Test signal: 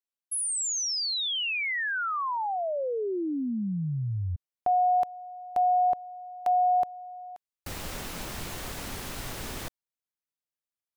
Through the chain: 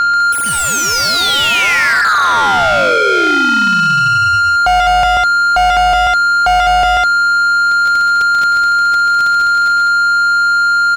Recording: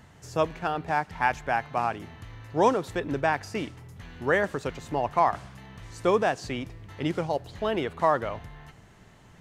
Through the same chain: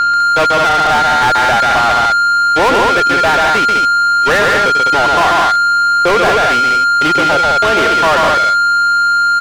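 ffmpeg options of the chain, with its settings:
ffmpeg -i in.wav -filter_complex "[0:a]agate=range=-39dB:threshold=-36dB:ratio=16:release=29:detection=peak,adynamicequalizer=threshold=0.0141:dfrequency=1000:dqfactor=1.6:tfrequency=1000:tqfactor=1.6:attack=5:release=100:ratio=0.375:range=2:mode=cutabove:tftype=bell,aeval=exprs='val(0)+0.0282*sin(2*PI*1400*n/s)':channel_layout=same,aecho=1:1:137|204.1:0.562|0.447,aeval=exprs='val(0)+0.00501*(sin(2*PI*60*n/s)+sin(2*PI*2*60*n/s)/2+sin(2*PI*3*60*n/s)/3+sin(2*PI*4*60*n/s)/4+sin(2*PI*5*60*n/s)/5)':channel_layout=same,asplit=2[link_01][link_02];[link_02]highpass=frequency=720:poles=1,volume=32dB,asoftclip=type=tanh:threshold=-8dB[link_03];[link_01][link_03]amix=inputs=2:normalize=0,lowpass=frequency=3500:poles=1,volume=-6dB,volume=4dB" out.wav

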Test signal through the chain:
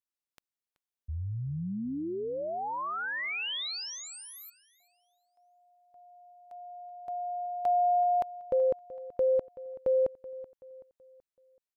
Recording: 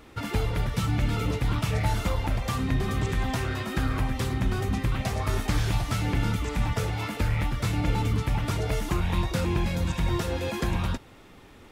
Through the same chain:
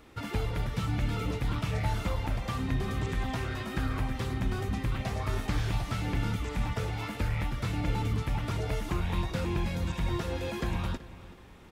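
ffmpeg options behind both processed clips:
ffmpeg -i in.wav -filter_complex "[0:a]acrossover=split=4700[link_01][link_02];[link_02]acompressor=threshold=-45dB:ratio=4:attack=1:release=60[link_03];[link_01][link_03]amix=inputs=2:normalize=0,asplit=2[link_04][link_05];[link_05]adelay=379,lowpass=frequency=4700:poles=1,volume=-17dB,asplit=2[link_06][link_07];[link_07]adelay=379,lowpass=frequency=4700:poles=1,volume=0.43,asplit=2[link_08][link_09];[link_09]adelay=379,lowpass=frequency=4700:poles=1,volume=0.43,asplit=2[link_10][link_11];[link_11]adelay=379,lowpass=frequency=4700:poles=1,volume=0.43[link_12];[link_04][link_06][link_08][link_10][link_12]amix=inputs=5:normalize=0,volume=-4.5dB" out.wav

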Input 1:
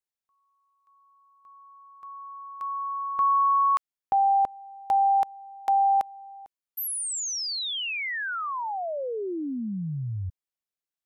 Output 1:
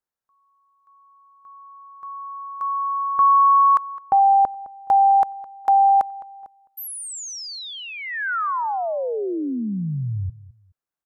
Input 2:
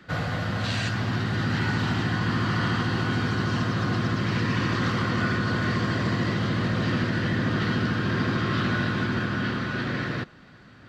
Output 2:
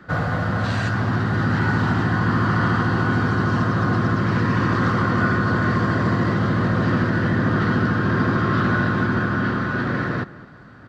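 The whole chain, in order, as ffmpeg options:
ffmpeg -i in.wav -filter_complex "[0:a]highshelf=frequency=1900:width_type=q:width=1.5:gain=-7.5,asplit=2[link_01][link_02];[link_02]adelay=211,lowpass=frequency=2900:poles=1,volume=-18dB,asplit=2[link_03][link_04];[link_04]adelay=211,lowpass=frequency=2900:poles=1,volume=0.25[link_05];[link_01][link_03][link_05]amix=inputs=3:normalize=0,volume=5.5dB" out.wav

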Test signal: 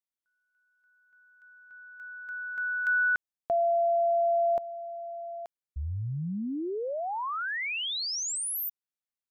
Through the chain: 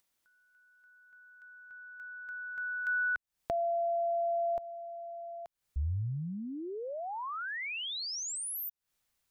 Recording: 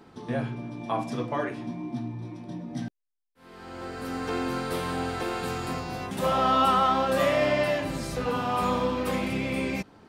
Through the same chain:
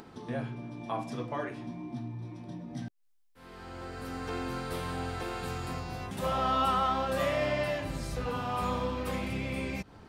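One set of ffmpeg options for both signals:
ffmpeg -i in.wav -af "asubboost=boost=2.5:cutoff=130,acompressor=mode=upward:threshold=-33dB:ratio=1.5:attack=39:release=120:knee=2.83:detection=peak,volume=-5.5dB" out.wav

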